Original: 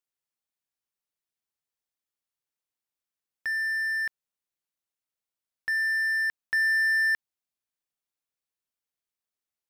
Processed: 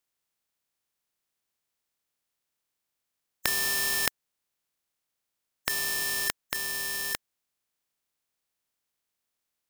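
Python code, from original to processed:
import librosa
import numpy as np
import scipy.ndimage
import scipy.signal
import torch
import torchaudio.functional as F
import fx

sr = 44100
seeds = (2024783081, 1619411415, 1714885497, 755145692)

y = fx.spec_flatten(x, sr, power=0.26)
y = fx.over_compress(y, sr, threshold_db=-32.0, ratio=-1.0)
y = F.gain(torch.from_numpy(y), 2.5).numpy()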